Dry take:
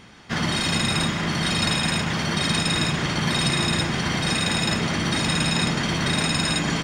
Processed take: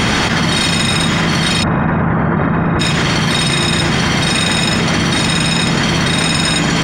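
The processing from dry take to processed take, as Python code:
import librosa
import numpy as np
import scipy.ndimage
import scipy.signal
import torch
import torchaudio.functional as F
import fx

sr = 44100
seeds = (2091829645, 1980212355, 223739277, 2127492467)

y = fx.lowpass(x, sr, hz=1500.0, slope=24, at=(1.62, 2.79), fade=0.02)
y = fx.env_flatten(y, sr, amount_pct=100)
y = y * librosa.db_to_amplitude(5.5)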